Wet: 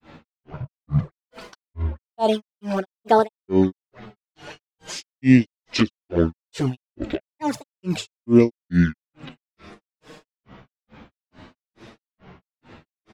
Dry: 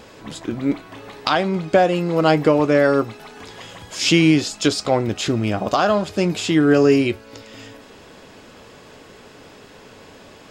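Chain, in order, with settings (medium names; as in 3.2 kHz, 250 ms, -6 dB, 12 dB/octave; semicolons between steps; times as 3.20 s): touch-sensitive flanger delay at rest 7.3 ms, full sweep at -11.5 dBFS; resampled via 32 kHz; tape speed -20%; granulator 250 ms, grains 2.3 per s, pitch spread up and down by 12 st; trim +3.5 dB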